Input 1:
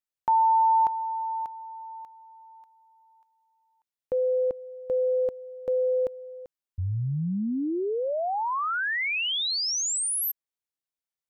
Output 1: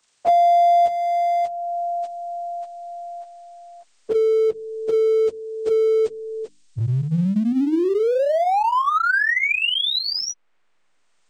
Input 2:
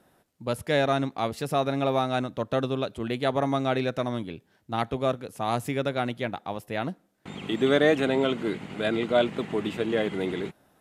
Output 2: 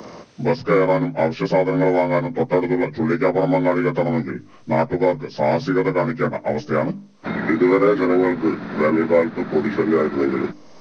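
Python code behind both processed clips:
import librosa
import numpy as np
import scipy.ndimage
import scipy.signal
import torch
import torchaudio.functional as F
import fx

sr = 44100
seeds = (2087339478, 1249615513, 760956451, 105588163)

p1 = fx.partial_stretch(x, sr, pct=80)
p2 = fx.hum_notches(p1, sr, base_hz=50, count=6)
p3 = fx.backlash(p2, sr, play_db=-27.5)
p4 = p2 + (p3 * librosa.db_to_amplitude(-9.0))
p5 = fx.band_squash(p4, sr, depth_pct=70)
y = p5 * librosa.db_to_amplitude(7.0)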